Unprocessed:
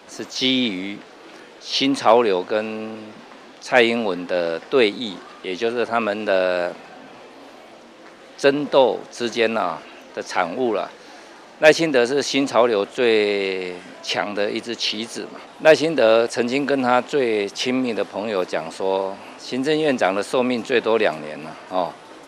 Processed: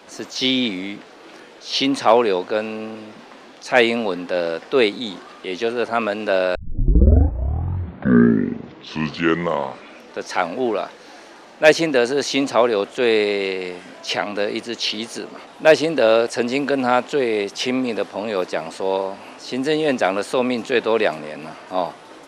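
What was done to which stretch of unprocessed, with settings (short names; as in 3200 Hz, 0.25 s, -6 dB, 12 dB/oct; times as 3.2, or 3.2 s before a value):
6.55 tape start 3.77 s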